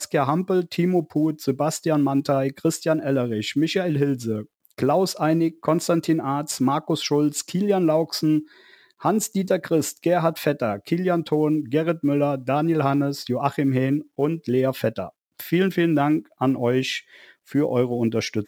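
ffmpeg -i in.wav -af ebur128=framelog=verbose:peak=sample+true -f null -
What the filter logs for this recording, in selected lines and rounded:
Integrated loudness:
  I:         -22.6 LUFS
  Threshold: -32.9 LUFS
Loudness range:
  LRA:         1.2 LU
  Threshold: -42.9 LUFS
  LRA low:   -23.4 LUFS
  LRA high:  -22.2 LUFS
Sample peak:
  Peak:       -6.2 dBFS
True peak:
  Peak:       -6.2 dBFS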